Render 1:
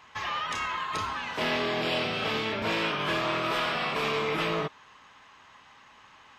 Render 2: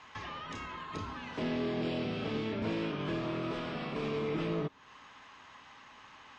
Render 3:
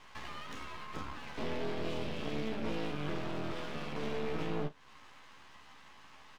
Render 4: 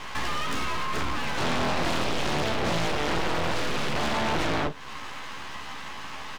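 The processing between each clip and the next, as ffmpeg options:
-filter_complex "[0:a]lowpass=f=7.5k:w=0.5412,lowpass=f=7.5k:w=1.3066,equalizer=f=270:w=4:g=4,acrossover=split=450[a][b];[b]acompressor=threshold=-46dB:ratio=3[c];[a][c]amix=inputs=2:normalize=0"
-filter_complex "[0:a]aeval=exprs='max(val(0),0)':c=same,asplit=2[a][b];[b]aecho=0:1:14|48:0.531|0.15[c];[a][c]amix=inputs=2:normalize=0"
-af "aeval=exprs='0.0891*sin(PI/2*5.62*val(0)/0.0891)':c=same"

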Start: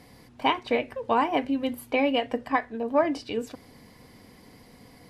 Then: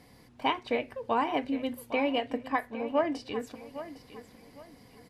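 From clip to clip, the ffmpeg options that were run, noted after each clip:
-af "aecho=1:1:808|1616|2424:0.211|0.0613|0.0178,volume=-4.5dB"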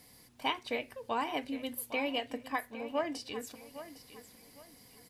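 -af "crystalizer=i=4:c=0,volume=-7dB"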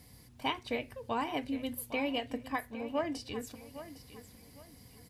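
-af "equalizer=f=73:w=0.53:g=15,volume=-1.5dB"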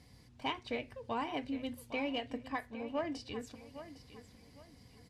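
-filter_complex "[0:a]asplit=2[a][b];[b]volume=31dB,asoftclip=hard,volume=-31dB,volume=-9.5dB[c];[a][c]amix=inputs=2:normalize=0,lowpass=6.6k,volume=-5dB"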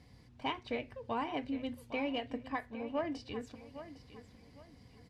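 -af "highshelf=f=5.5k:g=-10.5,volume=1dB"

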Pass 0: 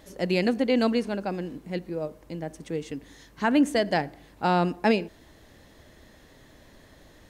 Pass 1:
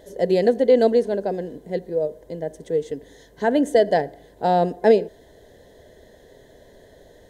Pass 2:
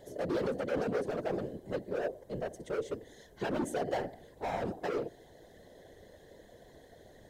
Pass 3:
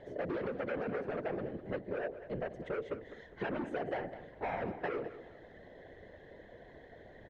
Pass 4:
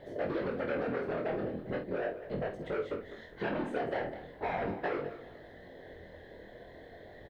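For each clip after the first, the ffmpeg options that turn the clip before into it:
-af "superequalizer=7b=3.55:8b=2.51:10b=0.316:12b=0.316:14b=0.708"
-af "alimiter=limit=-14.5dB:level=0:latency=1:release=93,volume=24.5dB,asoftclip=hard,volume=-24.5dB,afftfilt=real='hypot(re,im)*cos(2*PI*random(0))':imag='hypot(re,im)*sin(2*PI*random(1))':win_size=512:overlap=0.75"
-af "acompressor=threshold=-35dB:ratio=6,lowpass=f=2.2k:t=q:w=1.7,aecho=1:1:202|404|606:0.188|0.0584|0.0181,volume=1dB"
-filter_complex "[0:a]flanger=delay=20:depth=5.2:speed=0.39,aexciter=amount=1.4:drive=6.1:freq=3.6k,asplit=2[a][b];[b]adelay=49,volume=-8.5dB[c];[a][c]amix=inputs=2:normalize=0,volume=5.5dB"

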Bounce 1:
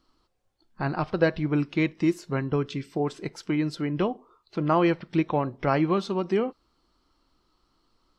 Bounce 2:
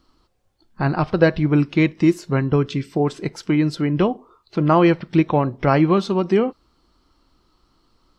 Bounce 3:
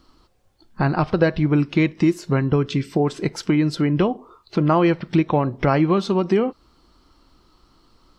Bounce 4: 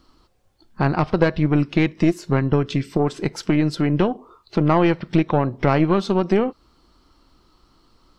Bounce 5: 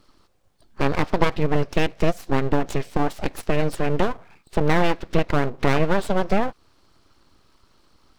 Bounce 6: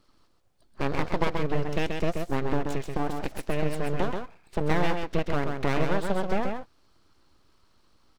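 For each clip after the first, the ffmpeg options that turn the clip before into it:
-af "equalizer=f=71:w=0.32:g=4,volume=6dB"
-af "acompressor=threshold=-24dB:ratio=2,volume=5dB"
-af "aeval=exprs='0.708*(cos(1*acos(clip(val(0)/0.708,-1,1)))-cos(1*PI/2))+0.1*(cos(3*acos(clip(val(0)/0.708,-1,1)))-cos(3*PI/2))+0.0708*(cos(4*acos(clip(val(0)/0.708,-1,1)))-cos(4*PI/2))+0.0562*(cos(5*acos(clip(val(0)/0.708,-1,1)))-cos(5*PI/2))+0.0158*(cos(7*acos(clip(val(0)/0.708,-1,1)))-cos(7*PI/2))':c=same,volume=1dB"
-af "aeval=exprs='abs(val(0))':c=same"
-af "aecho=1:1:132:0.562,volume=-7dB"

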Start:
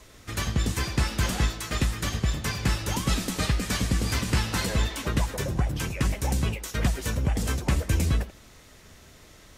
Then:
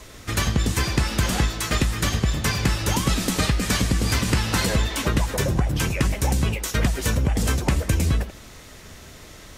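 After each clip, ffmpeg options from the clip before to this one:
-af "acompressor=threshold=-25dB:ratio=6,volume=8dB"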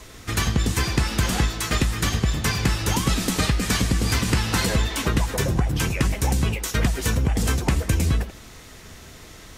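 -af "bandreject=f=580:w=12"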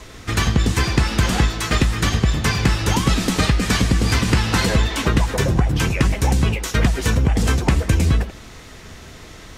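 -af "highshelf=f=8.9k:g=-11,volume=4.5dB"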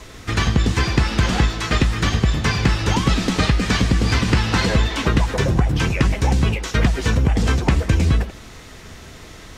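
-filter_complex "[0:a]acrossover=split=6700[a][b];[b]acompressor=threshold=-46dB:ratio=4:attack=1:release=60[c];[a][c]amix=inputs=2:normalize=0"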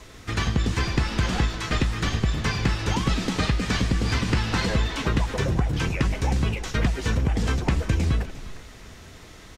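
-filter_complex "[0:a]asplit=4[a][b][c][d];[b]adelay=353,afreqshift=-56,volume=-15dB[e];[c]adelay=706,afreqshift=-112,volume=-25.2dB[f];[d]adelay=1059,afreqshift=-168,volume=-35.3dB[g];[a][e][f][g]amix=inputs=4:normalize=0,volume=-6dB"

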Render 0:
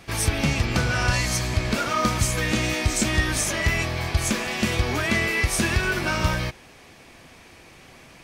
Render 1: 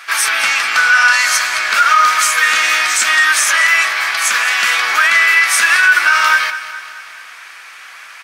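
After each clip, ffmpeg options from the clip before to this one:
-af "highpass=f=1.4k:t=q:w=3.1,aecho=1:1:212|424|636|848|1060:0.188|0.104|0.057|0.0313|0.0172,alimiter=level_in=12dB:limit=-1dB:release=50:level=0:latency=1,volume=-1dB"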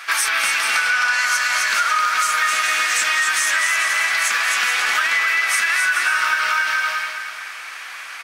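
-filter_complex "[0:a]asplit=2[a][b];[b]aecho=0:1:260|429|538.8|610.3|656.7:0.631|0.398|0.251|0.158|0.1[c];[a][c]amix=inputs=2:normalize=0,acompressor=threshold=-16dB:ratio=6"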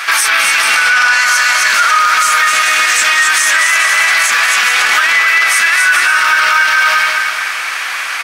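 -af "alimiter=level_in=15.5dB:limit=-1dB:release=50:level=0:latency=1,volume=-1dB"

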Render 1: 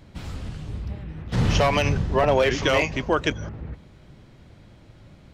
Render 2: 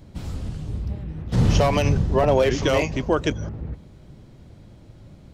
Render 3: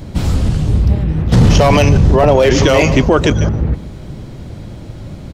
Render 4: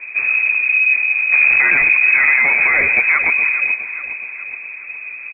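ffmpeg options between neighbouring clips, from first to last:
-af "equalizer=f=2k:w=0.49:g=-8,volume=3.5dB"
-filter_complex "[0:a]asplit=2[a][b];[b]adelay=145.8,volume=-19dB,highshelf=f=4k:g=-3.28[c];[a][c]amix=inputs=2:normalize=0,asplit=2[d][e];[e]asoftclip=type=tanh:threshold=-23.5dB,volume=-11dB[f];[d][f]amix=inputs=2:normalize=0,alimiter=level_in=15.5dB:limit=-1dB:release=50:level=0:latency=1,volume=-1dB"
-af "asoftclip=type=tanh:threshold=-6dB,aecho=1:1:417|834|1251|1668|2085:0.251|0.128|0.0653|0.0333|0.017,lowpass=f=2.2k:t=q:w=0.5098,lowpass=f=2.2k:t=q:w=0.6013,lowpass=f=2.2k:t=q:w=0.9,lowpass=f=2.2k:t=q:w=2.563,afreqshift=-2600,volume=-2dB"

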